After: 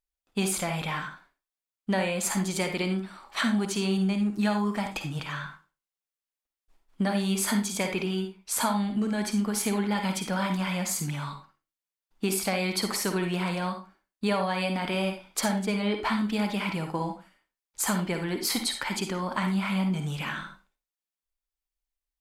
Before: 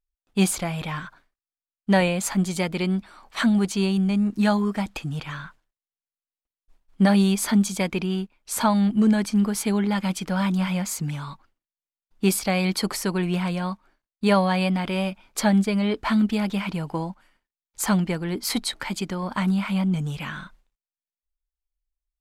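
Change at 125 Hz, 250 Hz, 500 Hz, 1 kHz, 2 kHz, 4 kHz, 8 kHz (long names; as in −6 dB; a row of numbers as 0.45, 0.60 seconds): −6.0, −6.5, −4.0, −3.0, −2.0, −1.5, −0.5 decibels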